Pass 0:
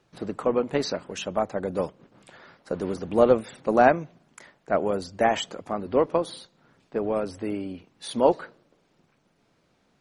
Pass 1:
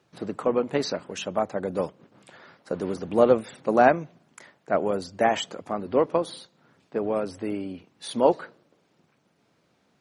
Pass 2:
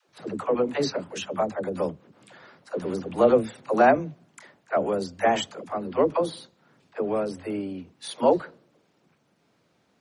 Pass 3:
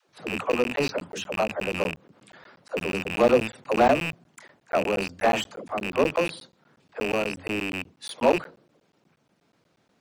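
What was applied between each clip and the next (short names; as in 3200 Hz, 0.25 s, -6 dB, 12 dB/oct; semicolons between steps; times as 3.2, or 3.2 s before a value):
HPF 87 Hz
dispersion lows, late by 84 ms, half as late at 380 Hz
rattling part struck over -37 dBFS, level -13 dBFS; crackling interface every 0.12 s, samples 512, zero, from 0.52; slew limiter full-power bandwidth 160 Hz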